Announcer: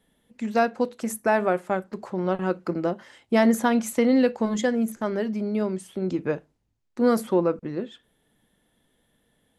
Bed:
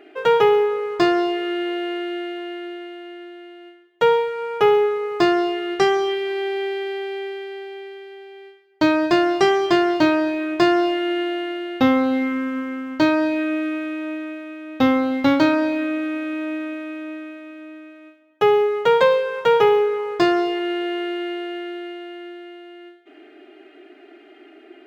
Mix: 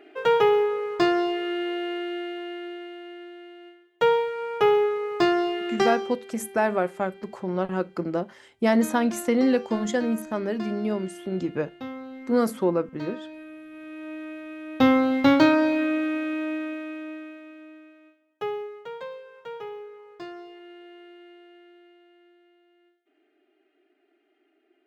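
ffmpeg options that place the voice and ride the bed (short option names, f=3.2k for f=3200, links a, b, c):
-filter_complex "[0:a]adelay=5300,volume=-1.5dB[a];[1:a]volume=15dB,afade=t=out:st=5.78:d=0.38:silence=0.158489,afade=t=in:st=13.69:d=1.23:silence=0.112202,afade=t=out:st=15.95:d=2.93:silence=0.0891251[b];[a][b]amix=inputs=2:normalize=0"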